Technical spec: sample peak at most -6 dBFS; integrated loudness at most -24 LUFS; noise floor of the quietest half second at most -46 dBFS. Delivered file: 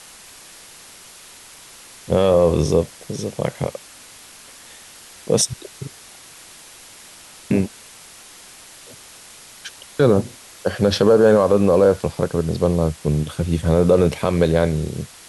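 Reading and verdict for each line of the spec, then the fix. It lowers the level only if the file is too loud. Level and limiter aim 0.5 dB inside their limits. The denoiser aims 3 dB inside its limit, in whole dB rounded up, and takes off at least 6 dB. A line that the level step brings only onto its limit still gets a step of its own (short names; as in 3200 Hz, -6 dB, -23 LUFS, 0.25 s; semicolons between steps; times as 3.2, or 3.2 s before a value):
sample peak -4.5 dBFS: fail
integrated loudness -18.5 LUFS: fail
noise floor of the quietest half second -43 dBFS: fail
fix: gain -6 dB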